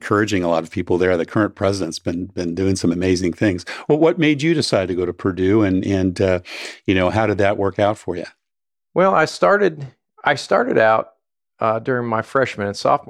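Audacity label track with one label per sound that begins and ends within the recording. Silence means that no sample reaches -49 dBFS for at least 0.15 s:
8.950000	9.930000	sound
10.180000	11.120000	sound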